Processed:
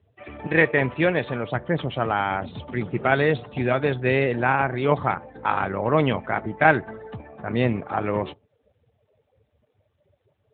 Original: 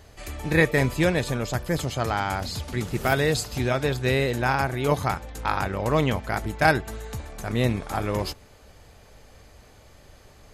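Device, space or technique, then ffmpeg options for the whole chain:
mobile call with aggressive noise cancelling: -filter_complex "[0:a]asettb=1/sr,asplit=3[a][b][c];[a]atrim=end=0.474[d];[b]atrim=start=0.47:end=1.46,asetpts=PTS-STARTPTS,afade=t=in:d=0.004:c=qsin,afade=t=out:st=0.986:d=0.004:c=qsin,adynamicequalizer=threshold=0.0251:dfrequency=170:dqfactor=0.72:tfrequency=170:tqfactor=0.72:attack=5:release=100:ratio=0.375:range=2:mode=cutabove:tftype=bell[e];[c]atrim=start=1.456[f];[d][e]acrossfade=d=0.004:c1=hsin:c2=qsin[g];[g][f]acrossfade=d=0.004:c1=qsin:c2=hsin,highpass=f=150:p=1,afftdn=nr=24:nf=-42,volume=3.5dB" -ar 8000 -c:a libopencore_amrnb -b:a 12200

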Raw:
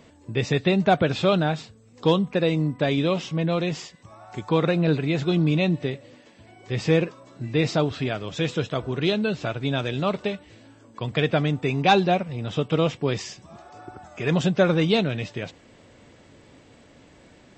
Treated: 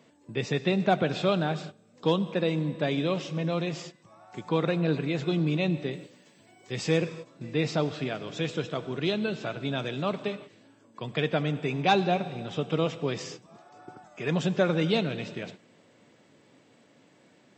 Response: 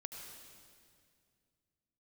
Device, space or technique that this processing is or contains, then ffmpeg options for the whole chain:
keyed gated reverb: -filter_complex "[0:a]highpass=f=130:w=0.5412,highpass=f=130:w=1.3066,asettb=1/sr,asplit=3[a][b][c];[a]atrim=end=5.934[d];[b]atrim=start=5.93:end=6.98,asetpts=PTS-STARTPTS,afade=t=in:d=0.004:c=qsin,afade=t=out:st=1.046:d=0.004:c=qsin,aemphasis=mode=production:type=50fm[e];[c]atrim=start=6.976[f];[d][e]acrossfade=d=0.004:c1=hsin:c2=qsin[g];[g][f]acrossfade=d=0.004:c1=qsin:c2=hsin,asplit=3[h][i][j];[1:a]atrim=start_sample=2205[k];[i][k]afir=irnorm=-1:irlink=0[l];[j]apad=whole_len=775228[m];[l][m]sidechaingate=range=-19dB:threshold=-41dB:ratio=16:detection=peak,volume=-4dB[n];[h][n]amix=inputs=2:normalize=0,volume=-7.5dB"

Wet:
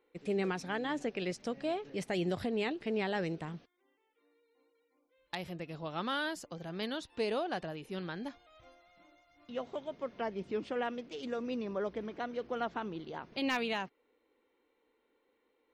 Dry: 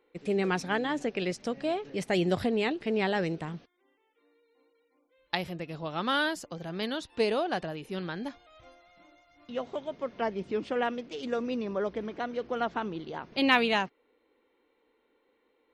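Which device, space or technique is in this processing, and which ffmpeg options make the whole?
clipper into limiter: -af "asoftclip=type=hard:threshold=-15dB,alimiter=limit=-20dB:level=0:latency=1:release=155,volume=-4.5dB"

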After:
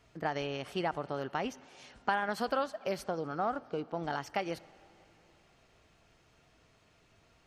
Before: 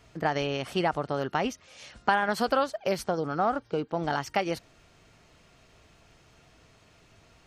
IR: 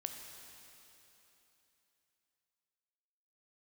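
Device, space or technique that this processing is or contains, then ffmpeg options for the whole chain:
filtered reverb send: -filter_complex "[0:a]asplit=2[a][b];[b]highpass=150,lowpass=4.8k[c];[1:a]atrim=start_sample=2205[d];[c][d]afir=irnorm=-1:irlink=0,volume=-11.5dB[e];[a][e]amix=inputs=2:normalize=0,volume=-8dB"

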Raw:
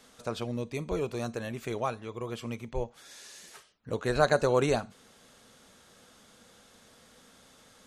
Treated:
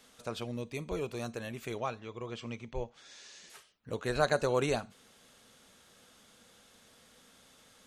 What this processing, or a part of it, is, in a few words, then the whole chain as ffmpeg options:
presence and air boost: -filter_complex "[0:a]equalizer=f=2.8k:t=o:w=1.1:g=3.5,highshelf=f=10k:g=6,asettb=1/sr,asplit=3[a][b][c];[a]atrim=end=1.784[d];[b]atrim=start=1.78:end=3.5,asetpts=PTS-STARTPTS,afade=t=in:d=0.004:c=qsin,afade=t=out:st=1.716:d=0.004:c=qsin,lowpass=f=7k:w=0.5412,lowpass=f=7k:w=1.3066[e];[c]atrim=start=3.496[f];[d][e]acrossfade=d=0.004:c1=hsin:c2=qsin[g];[g][f]acrossfade=d=0.004:c1=qsin:c2=hsin,volume=-4.5dB"

